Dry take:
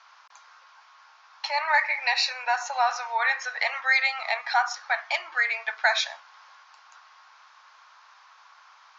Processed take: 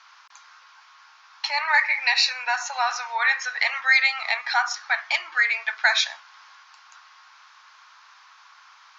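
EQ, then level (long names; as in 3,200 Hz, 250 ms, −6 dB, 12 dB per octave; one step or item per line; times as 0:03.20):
parametric band 570 Hz −10.5 dB 1.4 octaves
+5.0 dB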